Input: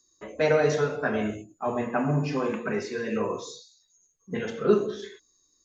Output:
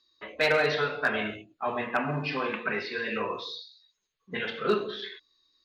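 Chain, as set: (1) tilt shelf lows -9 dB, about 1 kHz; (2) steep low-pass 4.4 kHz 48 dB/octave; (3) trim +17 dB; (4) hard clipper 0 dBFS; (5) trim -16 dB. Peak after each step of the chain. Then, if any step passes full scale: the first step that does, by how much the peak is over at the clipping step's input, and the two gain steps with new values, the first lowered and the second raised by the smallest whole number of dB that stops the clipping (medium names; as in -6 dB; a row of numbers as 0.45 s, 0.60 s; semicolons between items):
-11.5 dBFS, -11.0 dBFS, +6.0 dBFS, 0.0 dBFS, -16.0 dBFS; step 3, 6.0 dB; step 3 +11 dB, step 5 -10 dB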